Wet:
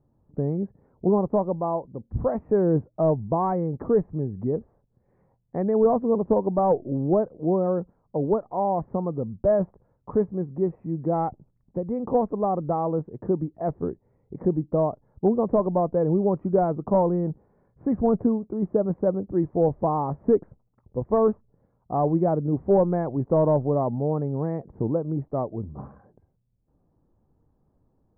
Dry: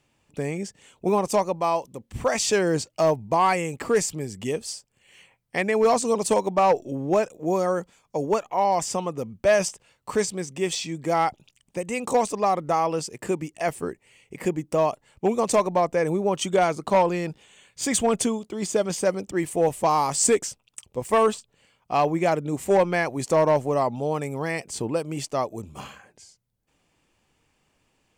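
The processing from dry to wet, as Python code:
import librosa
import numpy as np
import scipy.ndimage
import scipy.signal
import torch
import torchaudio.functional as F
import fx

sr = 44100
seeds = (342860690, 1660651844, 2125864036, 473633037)

y = scipy.ndimage.gaussian_filter1d(x, 9.0, mode='constant')
y = fx.low_shelf(y, sr, hz=260.0, db=7.5)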